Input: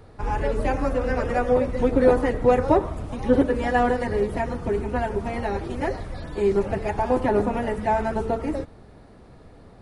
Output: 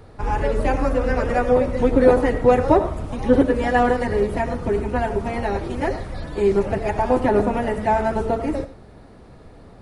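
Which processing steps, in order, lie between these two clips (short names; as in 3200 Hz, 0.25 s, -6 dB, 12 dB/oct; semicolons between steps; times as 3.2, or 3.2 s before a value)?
on a send: reverb, pre-delay 45 ms, DRR 13 dB; on the sum: gain +3 dB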